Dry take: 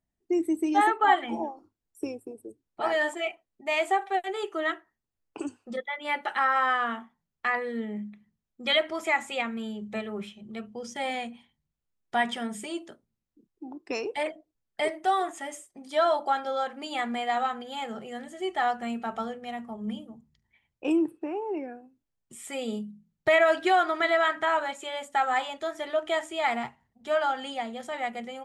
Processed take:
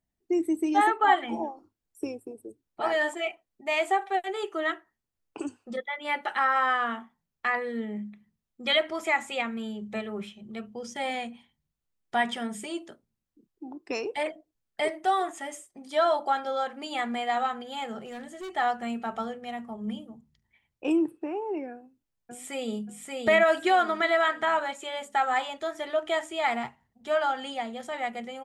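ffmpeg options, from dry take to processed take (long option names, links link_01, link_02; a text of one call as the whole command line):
ffmpeg -i in.wav -filter_complex "[0:a]asettb=1/sr,asplit=3[link_01][link_02][link_03];[link_01]atrim=end=18.054[link_04];[link_02]atrim=start=18.05:end=18.51,asetpts=PTS-STARTPTS,afade=type=in:duration=0.004:curve=qsin,afade=type=out:start_time=0.456:duration=0.004:curve=qsin,asoftclip=type=hard:threshold=-35.5dB[link_05];[link_03]atrim=start=18.506[link_06];[link_04][link_05]acrossfade=duration=0.004:curve1=hsin:curve2=qsin[link_07];[link_07][link_06]acrossfade=duration=0.004:curve1=qsin:curve2=hsin,asplit=2[link_08][link_09];[link_09]afade=type=in:start_time=21.71:duration=0.01,afade=type=out:start_time=22.85:duration=0.01,aecho=0:1:580|1160|1740|2320:0.794328|0.238298|0.0714895|0.0214469[link_10];[link_08][link_10]amix=inputs=2:normalize=0" out.wav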